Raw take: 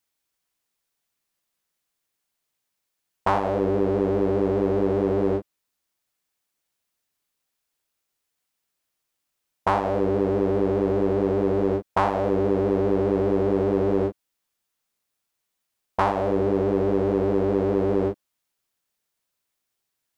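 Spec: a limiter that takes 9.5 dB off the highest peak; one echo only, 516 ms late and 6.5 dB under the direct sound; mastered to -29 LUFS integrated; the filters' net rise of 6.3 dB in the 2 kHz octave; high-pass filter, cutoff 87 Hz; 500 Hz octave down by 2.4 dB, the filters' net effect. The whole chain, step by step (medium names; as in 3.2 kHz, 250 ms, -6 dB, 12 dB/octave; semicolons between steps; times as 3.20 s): high-pass 87 Hz; peaking EQ 500 Hz -3.5 dB; peaking EQ 2 kHz +8.5 dB; peak limiter -14.5 dBFS; delay 516 ms -6.5 dB; trim -3.5 dB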